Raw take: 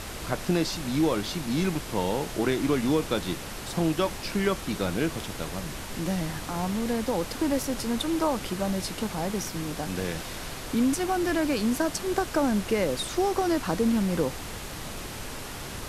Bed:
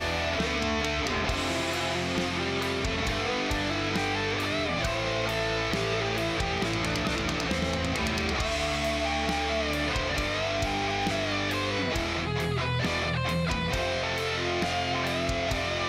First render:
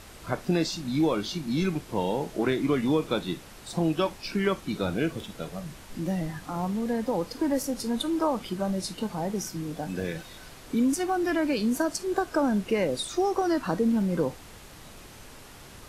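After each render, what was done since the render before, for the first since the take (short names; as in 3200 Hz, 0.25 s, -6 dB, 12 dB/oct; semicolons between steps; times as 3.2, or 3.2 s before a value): noise print and reduce 10 dB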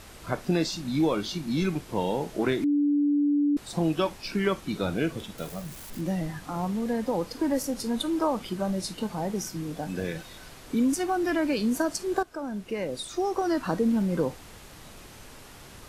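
2.64–3.57 bleep 290 Hz -20 dBFS; 5.38–6.01 switching spikes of -37.5 dBFS; 12.23–13.66 fade in, from -13.5 dB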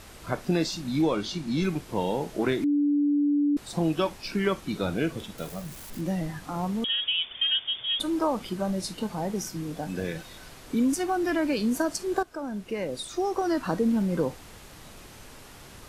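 1.02–1.63 LPF 9400 Hz; 6.84–8 inverted band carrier 3500 Hz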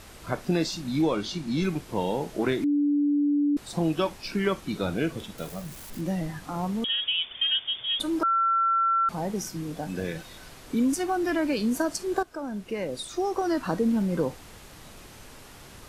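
8.23–9.09 bleep 1350 Hz -20 dBFS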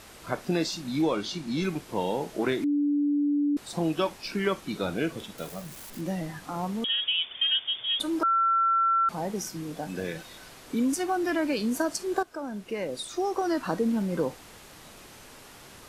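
low shelf 130 Hz -9.5 dB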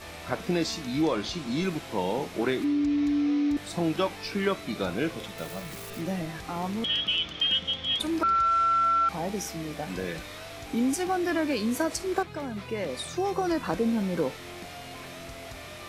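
add bed -14 dB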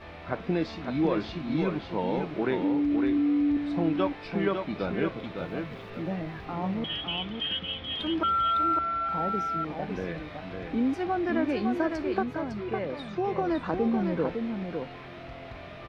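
air absorption 340 m; echo 0.556 s -5.5 dB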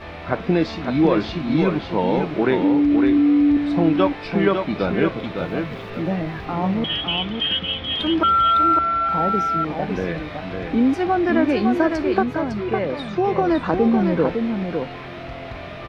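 gain +9 dB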